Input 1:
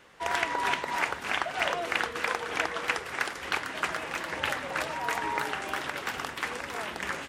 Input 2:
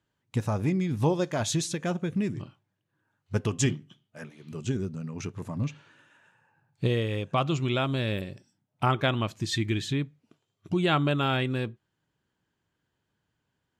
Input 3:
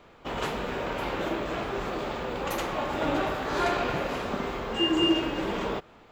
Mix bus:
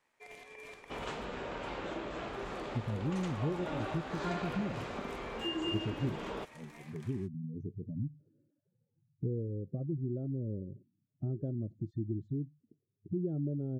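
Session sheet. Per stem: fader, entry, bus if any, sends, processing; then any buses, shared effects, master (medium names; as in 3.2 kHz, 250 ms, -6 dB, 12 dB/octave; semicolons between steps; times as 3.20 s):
-15.0 dB, 0.00 s, muted 1.25–2.33 s, no send, high-order bell 2.2 kHz -11 dB; peak limiter -22.5 dBFS, peak gain reduction 9 dB; ring modulator 1.4 kHz
-3.0 dB, 2.40 s, no send, spectral gate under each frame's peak -15 dB strong; inverse Chebyshev low-pass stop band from 920 Hz, stop band 40 dB
-7.5 dB, 0.65 s, no send, steep low-pass 9.2 kHz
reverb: none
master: compression 1.5:1, threshold -39 dBFS, peak gain reduction 6.5 dB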